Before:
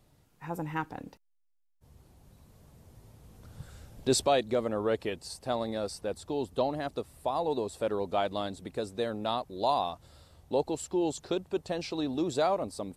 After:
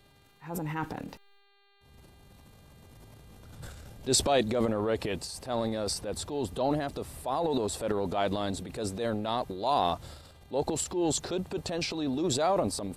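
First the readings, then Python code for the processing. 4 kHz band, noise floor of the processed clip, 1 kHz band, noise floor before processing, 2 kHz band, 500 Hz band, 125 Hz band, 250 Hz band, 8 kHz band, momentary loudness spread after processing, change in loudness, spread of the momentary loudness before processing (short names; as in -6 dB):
+3.5 dB, -61 dBFS, +0.5 dB, -70 dBFS, +1.5 dB, 0.0 dB, +4.5 dB, +2.0 dB, +6.5 dB, 12 LU, +1.0 dB, 10 LU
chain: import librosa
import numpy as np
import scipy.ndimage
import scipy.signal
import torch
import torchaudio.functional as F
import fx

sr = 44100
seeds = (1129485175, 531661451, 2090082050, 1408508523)

y = fx.transient(x, sr, attack_db=-6, sustain_db=10)
y = fx.dmg_buzz(y, sr, base_hz=400.0, harmonics=11, level_db=-67.0, tilt_db=-1, odd_only=False)
y = F.gain(torch.from_numpy(y), 1.0).numpy()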